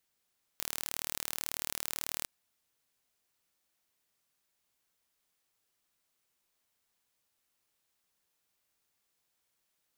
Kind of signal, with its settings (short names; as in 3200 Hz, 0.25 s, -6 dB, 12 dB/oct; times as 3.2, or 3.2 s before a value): pulse train 38.2/s, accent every 0, -8 dBFS 1.65 s